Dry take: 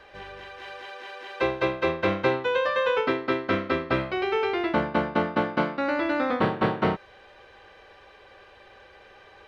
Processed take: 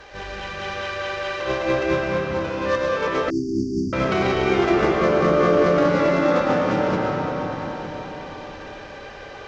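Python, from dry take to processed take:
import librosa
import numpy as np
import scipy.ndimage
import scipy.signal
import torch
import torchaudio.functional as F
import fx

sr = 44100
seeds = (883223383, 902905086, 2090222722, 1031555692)

y = fx.cvsd(x, sr, bps=32000)
y = fx.low_shelf(y, sr, hz=71.0, db=7.0)
y = fx.over_compress(y, sr, threshold_db=-28.0, ratio=-0.5)
y = fx.comb_fb(y, sr, f0_hz=58.0, decay_s=0.19, harmonics='all', damping=0.0, mix_pct=80, at=(2.0, 2.62))
y = fx.small_body(y, sr, hz=(460.0, 1200.0), ring_ms=25, db=11, at=(4.58, 5.6))
y = y + 10.0 ** (-13.0 / 20.0) * np.pad(y, (int(909 * sr / 1000.0), 0))[:len(y)]
y = fx.rev_freeverb(y, sr, rt60_s=4.4, hf_ratio=0.35, predelay_ms=75, drr_db=-4.0)
y = fx.cheby_harmonics(y, sr, harmonics=(6,), levels_db=(-34,), full_scale_db=-9.5)
y = fx.brickwall_bandstop(y, sr, low_hz=400.0, high_hz=4500.0, at=(3.3, 3.93))
y = y * 10.0 ** (2.5 / 20.0)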